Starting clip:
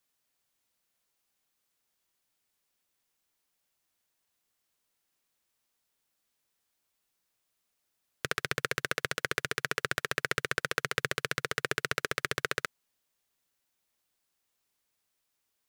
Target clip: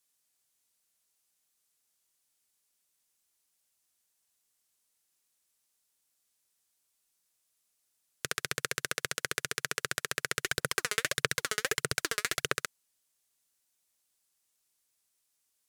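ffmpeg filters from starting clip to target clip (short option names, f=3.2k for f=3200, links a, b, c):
-filter_complex "[0:a]equalizer=f=9k:t=o:w=1.9:g=11,asplit=3[a][b][c];[a]afade=t=out:st=10.43:d=0.02[d];[b]aphaser=in_gain=1:out_gain=1:delay=4.8:decay=0.66:speed=1.6:type=sinusoidal,afade=t=in:st=10.43:d=0.02,afade=t=out:st=12.57:d=0.02[e];[c]afade=t=in:st=12.57:d=0.02[f];[d][e][f]amix=inputs=3:normalize=0,volume=-4.5dB"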